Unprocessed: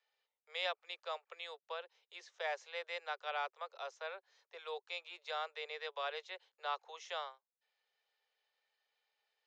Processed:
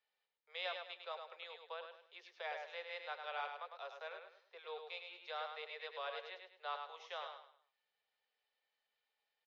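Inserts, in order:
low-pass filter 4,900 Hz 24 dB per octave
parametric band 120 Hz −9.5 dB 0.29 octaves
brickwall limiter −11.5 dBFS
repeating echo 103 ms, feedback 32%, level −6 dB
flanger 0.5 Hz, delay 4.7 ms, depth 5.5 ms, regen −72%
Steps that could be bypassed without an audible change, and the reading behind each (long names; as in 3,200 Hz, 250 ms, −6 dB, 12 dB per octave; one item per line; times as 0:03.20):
parametric band 120 Hz: nothing at its input below 340 Hz
brickwall limiter −11.5 dBFS: peak of its input −23.5 dBFS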